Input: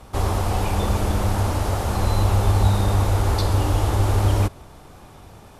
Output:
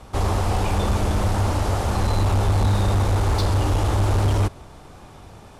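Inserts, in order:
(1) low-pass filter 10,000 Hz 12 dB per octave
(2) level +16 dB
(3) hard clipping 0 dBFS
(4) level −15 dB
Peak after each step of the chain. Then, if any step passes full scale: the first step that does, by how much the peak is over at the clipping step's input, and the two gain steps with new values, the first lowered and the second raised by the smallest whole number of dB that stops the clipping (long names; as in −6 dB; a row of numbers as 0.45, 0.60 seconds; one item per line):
−6.5, +9.5, 0.0, −15.0 dBFS
step 2, 9.5 dB
step 2 +6 dB, step 4 −5 dB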